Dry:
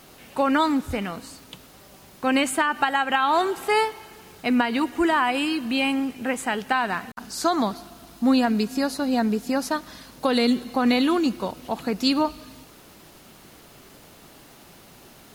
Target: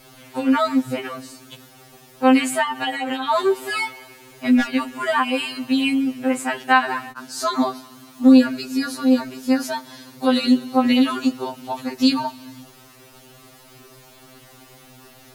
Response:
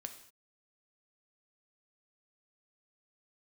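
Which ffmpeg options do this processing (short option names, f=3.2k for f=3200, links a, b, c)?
-filter_complex "[0:a]asettb=1/sr,asplit=3[a][b][c];[a]atrim=end=4.504[d];[b]atrim=start=4.5:end=5.04,asetpts=PTS-STARTPTS,afade=t=in:d=0.004:c=qsin,afade=t=out:st=0.536:d=0.004:c=qsin,aeval=exprs='0.188*(abs(mod(val(0)/0.188+3,4)-2)-1)':c=same[e];[c]atrim=start=5.036[f];[d][e]acrossfade=d=0.004:c1=hsin:c2=qsin[g];[g][f]acrossfade=d=0.004:c1=qsin:c2=hsin,afftfilt=real='re*2.45*eq(mod(b,6),0)':imag='im*2.45*eq(mod(b,6),0)':win_size=2048:overlap=0.75,volume=4dB"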